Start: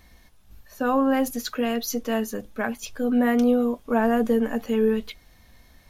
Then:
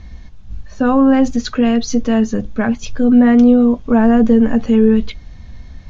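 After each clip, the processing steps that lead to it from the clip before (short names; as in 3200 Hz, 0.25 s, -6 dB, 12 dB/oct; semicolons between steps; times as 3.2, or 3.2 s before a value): Chebyshev low-pass 6700 Hz, order 5; tone controls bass +13 dB, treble -3 dB; in parallel at -1 dB: limiter -17 dBFS, peak gain reduction 11.5 dB; on the sum: gain +2.5 dB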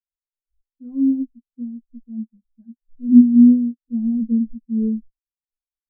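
spectral expander 4:1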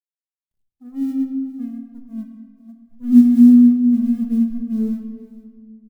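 G.711 law mismatch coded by A; echo 0.468 s -18 dB; shoebox room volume 2300 m³, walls mixed, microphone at 1.4 m; gain -2.5 dB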